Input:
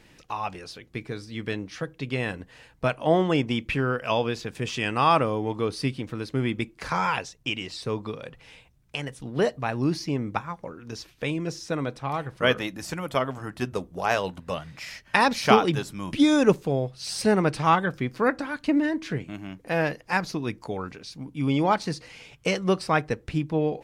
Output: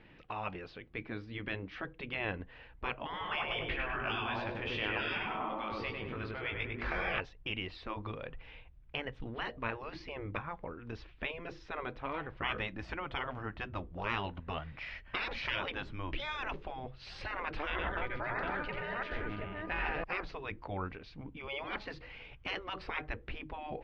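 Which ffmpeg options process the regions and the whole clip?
-filter_complex "[0:a]asettb=1/sr,asplit=3[a][b][c];[a]atrim=end=3.114[d];[b]atrim=start=3.11:end=7.2,asetpts=PTS-STARTPTS,afade=t=in:d=0.004:c=qsin,afade=t=out:st=4.086:d=0.004:c=qsin,lowshelf=f=500:g=-3,asplit=2[e][f];[f]adelay=20,volume=-5dB[g];[e][g]amix=inputs=2:normalize=0,atrim=end_sample=180369,asplit=2[h][i];[i]adelay=100,lowpass=f=2.4k:p=1,volume=-3.5dB,asplit=2[j][k];[k]adelay=100,lowpass=f=2.4k:p=1,volume=0.55,asplit=2[l][m];[m]adelay=100,lowpass=f=2.4k:p=1,volume=0.55,asplit=2[n][o];[o]adelay=100,lowpass=f=2.4k:p=1,volume=0.55,asplit=2[p][q];[q]adelay=100,lowpass=f=2.4k:p=1,volume=0.55,asplit=2[r][s];[s]adelay=100,lowpass=f=2.4k:p=1,volume=0.55,asplit=2[t][u];[u]adelay=100,lowpass=f=2.4k:p=1,volume=0.55,asplit=2[v][w];[w]adelay=100,lowpass=f=2.4k:p=1,volume=0.55[x];[h][j][l][n][p][r][t][v][x]amix=inputs=9:normalize=0,atrim=end_sample=180369[y];[c]atrim=start=7.196[z];[d][y]acrossfade=d=0.004:c1=hsin:c2=qsin[aa];[aa][z]acrossfade=d=0.004:c1=qsin:c2=hsin,asettb=1/sr,asplit=3[ab][ac][ad];[ab]atrim=end=17.704[ae];[ac]atrim=start=17.7:end=20.04,asetpts=PTS-STARTPTS,afade=t=in:d=0.004:c=qsin,afade=t=out:st=2.336:d=0.004:c=qsin,aeval=exprs='val(0)+0.0316*sin(2*PI*1100*n/s)':c=same,tremolo=f=120:d=0.4,aecho=1:1:87|131|267|727:0.708|0.251|0.316|0.376,atrim=end_sample=103194[af];[ad]atrim=start=20.036[ag];[ae][af]acrossfade=d=0.004:c1=hsin:c2=qsin[ah];[ah][ag]acrossfade=d=0.004:c1=qsin:c2=hsin,afftfilt=real='re*lt(hypot(re,im),0.158)':imag='im*lt(hypot(re,im),0.158)':win_size=1024:overlap=0.75,lowpass=f=3.1k:w=0.5412,lowpass=f=3.1k:w=1.3066,asubboost=boost=6:cutoff=59,volume=-3dB"

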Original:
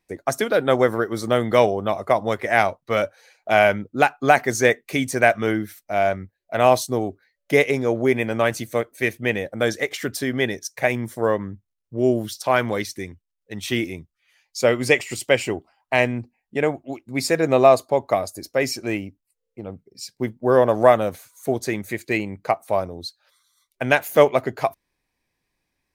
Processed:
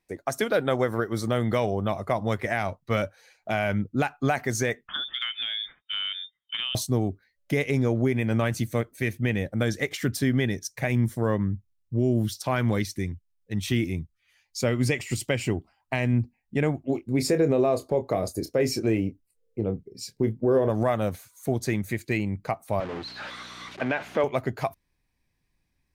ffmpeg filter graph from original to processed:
-filter_complex "[0:a]asettb=1/sr,asplit=3[a][b][c];[a]atrim=end=4.874[d];[b]atrim=start=4.87:end=6.75,asetpts=PTS-STARTPTS,afade=t=in:d=0.004:c=qsin,afade=t=out:st=1.876:d=0.004:c=qsin,lowpass=f=3.1k:t=q:w=0.5098,lowpass=f=3.1k:t=q:w=0.6013,lowpass=f=3.1k:t=q:w=0.9,lowpass=f=3.1k:t=q:w=2.563,afreqshift=-3700,acompressor=threshold=-23dB:ratio=10:attack=3.2:release=140:knee=1:detection=peak[e];[c]atrim=start=6.746[f];[d][e]acrossfade=d=0.004:c1=hsin:c2=qsin[g];[g][f]acrossfade=d=0.004:c1=qsin:c2=hsin,asettb=1/sr,asplit=3[h][i][j];[h]atrim=end=16.874[k];[i]atrim=start=16.87:end=20.7,asetpts=PTS-STARTPTS,afade=t=in:d=0.004:c=qsin,afade=t=out:st=3.826:d=0.004:c=qsin,equalizer=f=440:w=1.5:g=12,acompressor=threshold=-18dB:ratio=1.5:attack=3.2:release=140:knee=1:detection=peak,asplit=2[l][m];[m]adelay=27,volume=-10dB[n];[l][n]amix=inputs=2:normalize=0,atrim=end_sample=168903[o];[j]atrim=start=20.696[p];[k][o]acrossfade=d=0.004:c1=hsin:c2=qsin[q];[q][p]acrossfade=d=0.004:c1=qsin:c2=hsin,asettb=1/sr,asplit=3[r][s][t];[r]atrim=end=22.804[u];[s]atrim=start=22.8:end=24.24,asetpts=PTS-STARTPTS,afade=t=in:d=0.004:c=qsin,afade=t=out:st=1.436:d=0.004:c=qsin,aeval=exprs='val(0)+0.5*0.0596*sgn(val(0))':c=same,aeval=exprs='val(0)+0.01*(sin(2*PI*60*n/s)+sin(2*PI*2*60*n/s)/2+sin(2*PI*3*60*n/s)/3+sin(2*PI*4*60*n/s)/4+sin(2*PI*5*60*n/s)/5)':c=same,highpass=330,lowpass=2.6k[v];[t]atrim=start=24.236[w];[u][v]acrossfade=d=0.004:c1=hsin:c2=qsin[x];[x][w]acrossfade=d=0.004:c1=qsin:c2=hsin,asubboost=boost=4:cutoff=240,alimiter=limit=-10.5dB:level=0:latency=1:release=127,volume=-3dB"

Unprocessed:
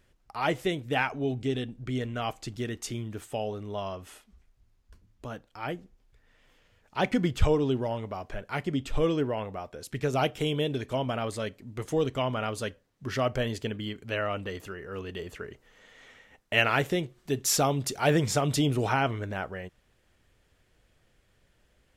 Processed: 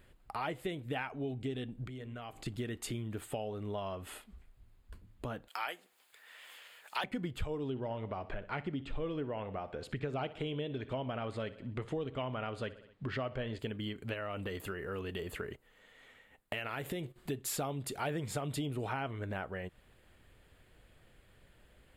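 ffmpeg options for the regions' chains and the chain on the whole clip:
-filter_complex "[0:a]asettb=1/sr,asplit=3[a][b][c];[a]atrim=end=1.864[d];[b]atrim=start=1.86:end=2.46,asetpts=PTS-STARTPTS,afade=t=in:d=0.004:c=qsin,afade=t=out:st=0.596:d=0.004:c=qsin,bandreject=f=50:t=h:w=6,bandreject=f=100:t=h:w=6,bandreject=f=150:t=h:w=6,bandreject=f=200:t=h:w=6,bandreject=f=250:t=h:w=6,bandreject=f=300:t=h:w=6,bandreject=f=350:t=h:w=6,bandreject=f=400:t=h:w=6,acompressor=threshold=-45dB:ratio=10:attack=3.2:release=140:knee=1:detection=peak[e];[c]atrim=start=2.456[f];[d][e]acrossfade=d=0.004:c1=hsin:c2=qsin[g];[g][f]acrossfade=d=0.004:c1=qsin:c2=hsin,asettb=1/sr,asplit=3[h][i][j];[h]atrim=end=5.484[k];[i]atrim=start=5.48:end=7.04,asetpts=PTS-STARTPTS,afade=t=in:d=0.004:c=qsin,afade=t=out:st=1.556:d=0.004:c=qsin,highpass=860,highshelf=f=3.6k:g=9,acontrast=72[l];[j]atrim=start=7.036[m];[k][l]acrossfade=d=0.004:c1=hsin:c2=qsin[n];[n][m]acrossfade=d=0.004:c1=qsin:c2=hsin,asettb=1/sr,asplit=3[o][p][q];[o]atrim=end=7.704[r];[p]atrim=start=7.7:end=13.59,asetpts=PTS-STARTPTS,afade=t=in:d=0.004:c=qsin,afade=t=out:st=5.886:d=0.004:c=qsin,lowpass=4.3k,aecho=1:1:62|124|186|248:0.119|0.0618|0.0321|0.0167,atrim=end_sample=259749[s];[q]atrim=start=13.586[t];[r][s]acrossfade=d=0.004:c1=hsin:c2=qsin[u];[u][t]acrossfade=d=0.004:c1=qsin:c2=hsin,asettb=1/sr,asplit=3[v][w][x];[v]atrim=end=14.134[y];[w]atrim=start=14.13:end=17.16,asetpts=PTS-STARTPTS,afade=t=in:d=0.004:c=qsin,afade=t=out:st=3.026:d=0.004:c=qsin,agate=range=-10dB:threshold=-50dB:ratio=16:release=100:detection=peak,highshelf=f=8.6k:g=7.5,acompressor=threshold=-31dB:ratio=3:attack=3.2:release=140:knee=1:detection=peak[z];[x]atrim=start=17.156[aa];[y][z]acrossfade=d=0.004:c1=hsin:c2=qsin[ab];[ab][aa]acrossfade=d=0.004:c1=qsin:c2=hsin,equalizer=f=5.8k:w=3.4:g=-14.5,acompressor=threshold=-41dB:ratio=4,volume=4dB"

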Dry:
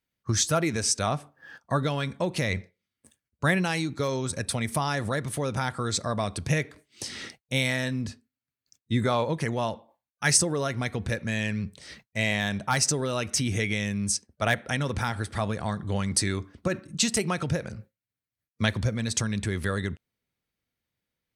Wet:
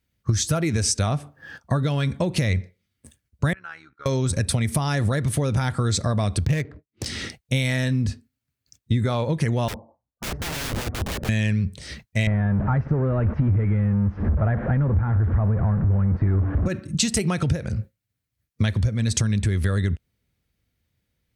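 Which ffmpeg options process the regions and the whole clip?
-filter_complex "[0:a]asettb=1/sr,asplit=3[a][b][c];[a]atrim=end=3.534[d];[b]atrim=start=3.53:end=4.06,asetpts=PTS-STARTPTS,afade=t=in:d=0.004:c=qsin,afade=t=out:st=0.526:d=0.004:c=qsin,agate=range=-33dB:threshold=-34dB:ratio=3:release=100:detection=peak,bandpass=f=1.4k:t=q:w=7.3,tremolo=f=73:d=0.71[e];[c]atrim=start=4.056[f];[d][e]acrossfade=d=0.004:c1=hsin:c2=qsin[g];[g][f]acrossfade=d=0.004:c1=qsin:c2=hsin,asettb=1/sr,asplit=3[h][i][j];[h]atrim=end=6.454[k];[i]atrim=start=6.45:end=7.06,asetpts=PTS-STARTPTS,afade=t=in:d=0.004:c=qsin,afade=t=out:st=0.606:d=0.004:c=qsin,agate=range=-33dB:threshold=-51dB:ratio=3:release=100:detection=peak,adynamicsmooth=sensitivity=6.5:basefreq=950[l];[j]atrim=start=7.056[m];[k][l]acrossfade=d=0.004:c1=hsin:c2=qsin[n];[n][m]acrossfade=d=0.004:c1=qsin:c2=hsin,asettb=1/sr,asplit=3[o][p][q];[o]atrim=end=9.684[r];[p]atrim=start=9.68:end=11.29,asetpts=PTS-STARTPTS,afade=t=in:d=0.004:c=qsin,afade=t=out:st=1.606:d=0.004:c=qsin,lowpass=f=1.1k:w=0.5412,lowpass=f=1.1k:w=1.3066,aeval=exprs='(mod(39.8*val(0)+1,2)-1)/39.8':c=same[s];[q]atrim=start=11.286[t];[r][s]acrossfade=d=0.004:c1=hsin:c2=qsin[u];[u][t]acrossfade=d=0.004:c1=qsin:c2=hsin,asettb=1/sr,asplit=3[v][w][x];[v]atrim=end=12.274[y];[w]atrim=start=12.27:end=16.66,asetpts=PTS-STARTPTS,afade=t=in:d=0.004:c=qsin,afade=t=out:st=4.386:d=0.004:c=qsin,aeval=exprs='val(0)+0.5*0.0631*sgn(val(0))':c=same,lowpass=f=1.5k:w=0.5412,lowpass=f=1.5k:w=1.3066,lowshelf=f=120:g=5.5[z];[x]atrim=start=16.656[aa];[y][z]acrossfade=d=0.004:c1=hsin:c2=qsin[ab];[ab][aa]acrossfade=d=0.004:c1=qsin:c2=hsin,equalizer=f=61:w=0.51:g=13,acompressor=threshold=-25dB:ratio=6,equalizer=f=1k:w=1.5:g=-3,volume=6.5dB"

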